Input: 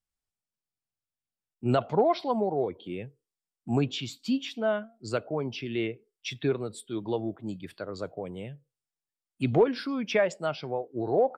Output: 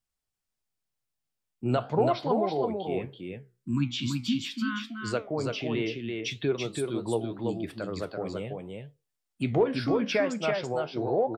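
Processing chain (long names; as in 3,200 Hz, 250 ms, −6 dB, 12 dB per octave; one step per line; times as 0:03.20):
time-frequency box erased 0:03.59–0:04.90, 350–960 Hz
in parallel at +2 dB: downward compressor, threshold −32 dBFS, peak gain reduction 14.5 dB
on the sum: flanger 1.4 Hz, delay 8.2 ms, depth 8.8 ms, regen +73%
single-tap delay 333 ms −4 dB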